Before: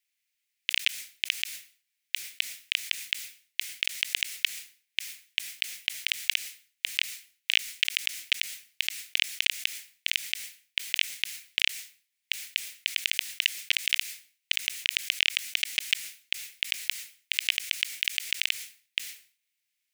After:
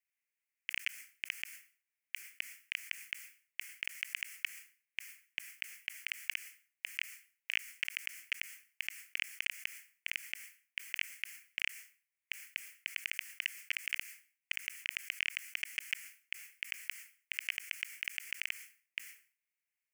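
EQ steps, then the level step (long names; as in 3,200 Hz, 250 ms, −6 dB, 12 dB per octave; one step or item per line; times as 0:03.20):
bass and treble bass −12 dB, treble −6 dB
phaser with its sweep stopped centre 1,600 Hz, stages 4
−4.0 dB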